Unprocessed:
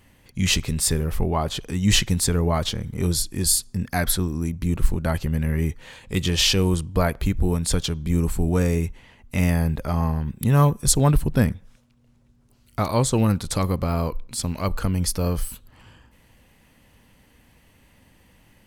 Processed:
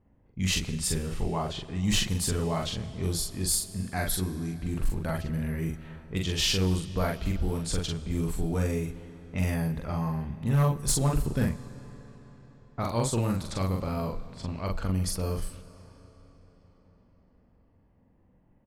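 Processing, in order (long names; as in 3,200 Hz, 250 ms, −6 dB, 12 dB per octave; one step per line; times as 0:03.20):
low-pass that shuts in the quiet parts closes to 740 Hz, open at −18 dBFS
double-tracking delay 43 ms −2.5 dB
hard clipping −9.5 dBFS, distortion −20 dB
on a send: convolution reverb RT60 5.0 s, pre-delay 40 ms, DRR 15 dB
on the sum: level −8.5 dB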